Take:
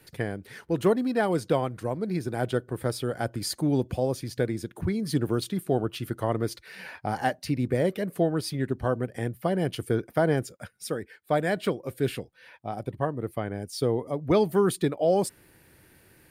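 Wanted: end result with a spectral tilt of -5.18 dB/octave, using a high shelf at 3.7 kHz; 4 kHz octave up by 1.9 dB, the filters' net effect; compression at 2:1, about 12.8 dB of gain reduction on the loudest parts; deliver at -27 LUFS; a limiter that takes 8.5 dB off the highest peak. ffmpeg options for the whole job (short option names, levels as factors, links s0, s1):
-af "highshelf=f=3700:g=-6,equalizer=f=4000:t=o:g=6.5,acompressor=threshold=0.00794:ratio=2,volume=5.01,alimiter=limit=0.178:level=0:latency=1"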